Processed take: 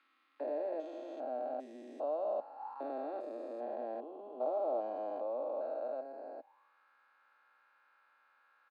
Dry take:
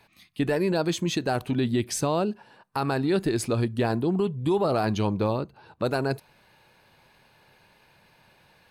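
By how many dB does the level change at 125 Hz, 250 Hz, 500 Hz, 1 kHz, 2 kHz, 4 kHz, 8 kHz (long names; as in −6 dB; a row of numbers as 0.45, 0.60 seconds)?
below −40 dB, −22.5 dB, −9.5 dB, −10.5 dB, below −25 dB, below −30 dB, below −40 dB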